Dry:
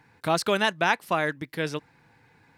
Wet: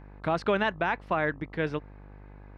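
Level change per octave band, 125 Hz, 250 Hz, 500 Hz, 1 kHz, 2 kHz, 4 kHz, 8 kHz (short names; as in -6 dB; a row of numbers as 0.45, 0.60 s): -0.5 dB, -1.0 dB, -1.5 dB, -3.5 dB, -4.0 dB, -10.0 dB, under -20 dB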